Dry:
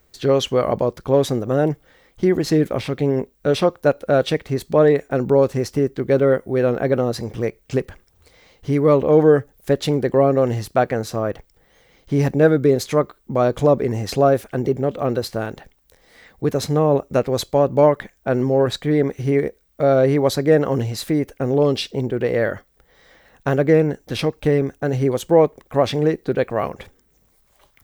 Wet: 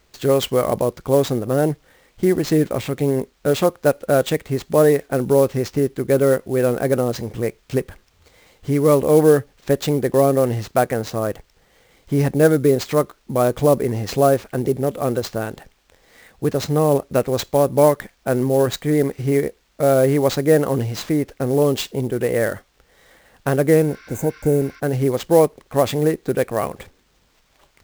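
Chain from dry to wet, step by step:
sample-rate reduction 11,000 Hz, jitter 20%
healed spectral selection 0:23.90–0:24.77, 980–6,000 Hz before

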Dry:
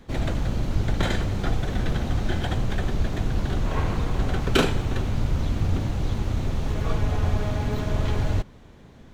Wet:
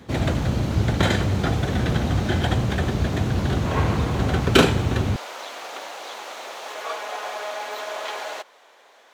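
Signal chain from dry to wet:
high-pass filter 66 Hz 24 dB per octave, from 0:05.16 580 Hz
level +5.5 dB

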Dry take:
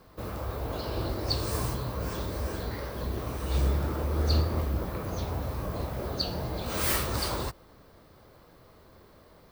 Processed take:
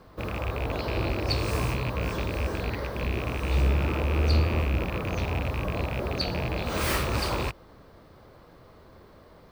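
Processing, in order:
loose part that buzzes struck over −33 dBFS, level −25 dBFS
low-pass filter 3,900 Hz 6 dB per octave
in parallel at −5.5 dB: gain into a clipping stage and back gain 24.5 dB

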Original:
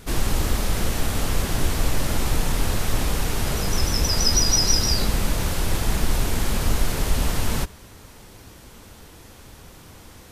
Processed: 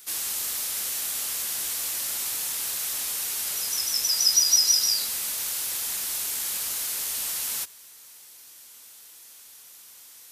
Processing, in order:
first difference
level +3.5 dB

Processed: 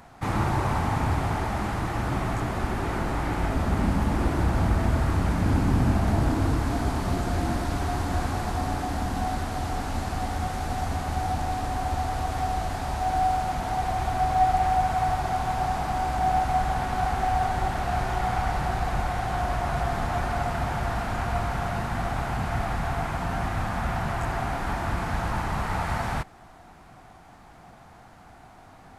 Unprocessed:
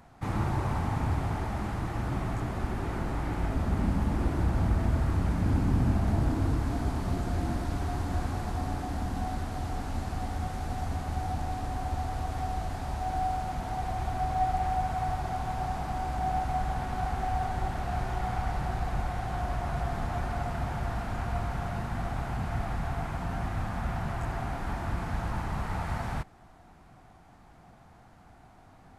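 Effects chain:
low-shelf EQ 360 Hz −5.5 dB
level +8 dB

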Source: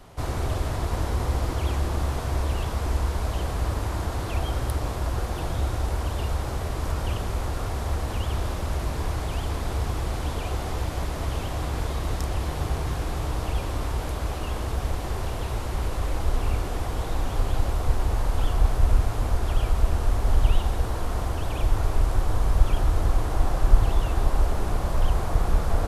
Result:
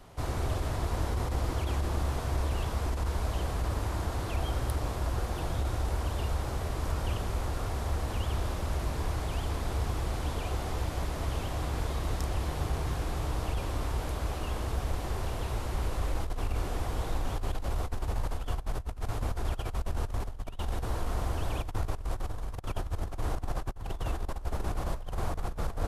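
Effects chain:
compressor whose output falls as the input rises −23 dBFS, ratio −0.5
level −6 dB

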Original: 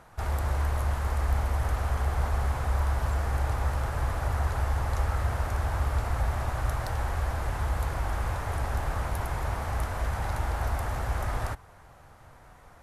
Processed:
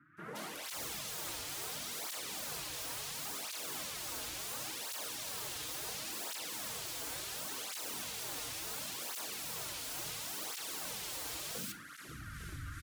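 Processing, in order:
elliptic band-stop filter 290–1,400 Hz, stop band 40 dB
mains-hum notches 60/120/180/240 Hz
automatic gain control gain up to 14 dB
two-band tremolo in antiphase 2.4 Hz, depth 50%, crossover 980 Hz
wave folding −38 dBFS
three-band delay without the direct sound mids, highs, lows 170/530 ms, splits 160/1,900 Hz
convolution reverb RT60 0.40 s, pre-delay 6 ms, DRR 10.5 dB
through-zero flanger with one copy inverted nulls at 0.71 Hz, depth 5.5 ms
level +4 dB

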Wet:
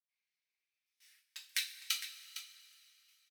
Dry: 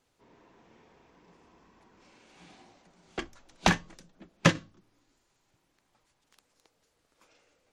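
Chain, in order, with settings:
high-pass filter 920 Hz 24 dB per octave
noise gate with hold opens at −51 dBFS
flanger 1.7 Hz, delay 4.3 ms, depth 3.5 ms, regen +61%
wrong playback speed 33 rpm record played at 78 rpm
parametric band 7,100 Hz −7 dB 0.27 octaves
on a send: single-tap delay 458 ms −11 dB
on the sum: coupled-rooms reverb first 0.27 s, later 3.1 s, from −20 dB, DRR −1 dB
level −3.5 dB

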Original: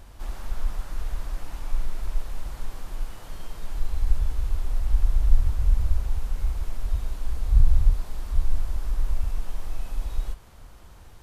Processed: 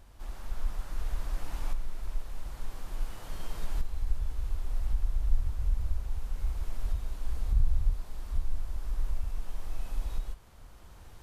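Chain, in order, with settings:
camcorder AGC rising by 5.4 dB per second
level −8.5 dB

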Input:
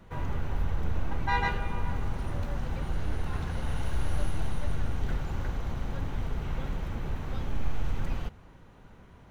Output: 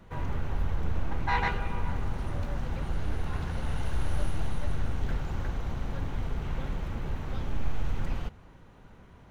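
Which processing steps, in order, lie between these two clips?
highs frequency-modulated by the lows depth 0.24 ms

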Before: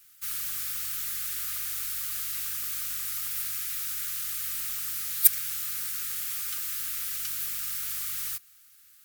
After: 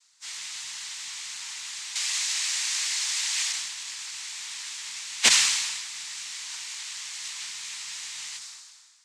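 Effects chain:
every partial snapped to a pitch grid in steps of 3 semitones
harmonic generator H 4 −14 dB, 7 −23 dB, 8 −28 dB, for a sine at 8.5 dBFS
0:01.95–0:03.52: tilt shelving filter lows −9.5 dB, about 690 Hz
cochlear-implant simulation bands 6
level that may fall only so fast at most 37 dB per second
level −3 dB

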